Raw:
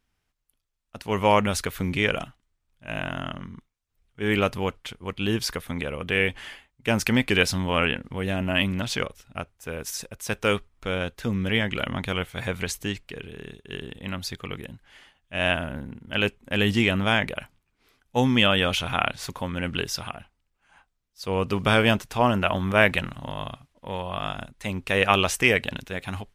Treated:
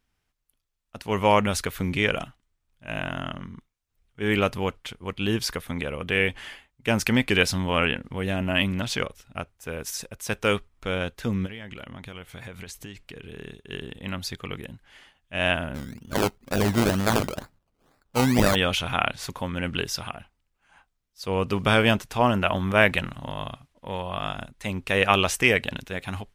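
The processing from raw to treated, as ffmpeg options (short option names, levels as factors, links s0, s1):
-filter_complex "[0:a]asplit=3[s0][s1][s2];[s0]afade=t=out:st=11.45:d=0.02[s3];[s1]acompressor=threshold=0.0158:ratio=6:attack=3.2:release=140:knee=1:detection=peak,afade=t=in:st=11.45:d=0.02,afade=t=out:st=13.27:d=0.02[s4];[s2]afade=t=in:st=13.27:d=0.02[s5];[s3][s4][s5]amix=inputs=3:normalize=0,asplit=3[s6][s7][s8];[s6]afade=t=out:st=15.74:d=0.02[s9];[s7]acrusher=samples=20:mix=1:aa=0.000001:lfo=1:lforange=12:lforate=2.1,afade=t=in:st=15.74:d=0.02,afade=t=out:st=18.54:d=0.02[s10];[s8]afade=t=in:st=18.54:d=0.02[s11];[s9][s10][s11]amix=inputs=3:normalize=0"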